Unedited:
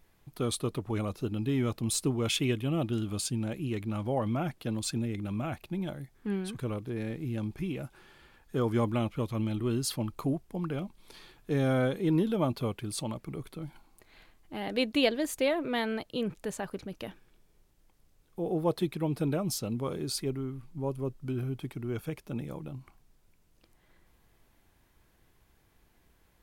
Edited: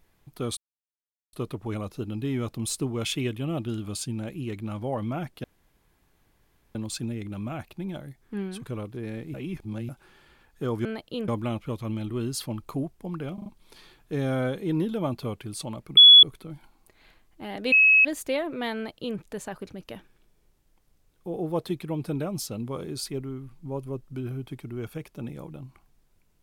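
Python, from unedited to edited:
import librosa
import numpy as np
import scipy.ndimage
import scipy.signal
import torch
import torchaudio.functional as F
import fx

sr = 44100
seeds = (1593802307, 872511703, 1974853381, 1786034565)

y = fx.edit(x, sr, fx.insert_silence(at_s=0.57, length_s=0.76),
    fx.insert_room_tone(at_s=4.68, length_s=1.31),
    fx.reverse_span(start_s=7.27, length_s=0.55),
    fx.stutter(start_s=10.84, slice_s=0.04, count=4),
    fx.insert_tone(at_s=13.35, length_s=0.26, hz=3390.0, db=-7.5),
    fx.bleep(start_s=14.84, length_s=0.33, hz=2570.0, db=-13.5),
    fx.duplicate(start_s=15.87, length_s=0.43, to_s=8.78), tone=tone)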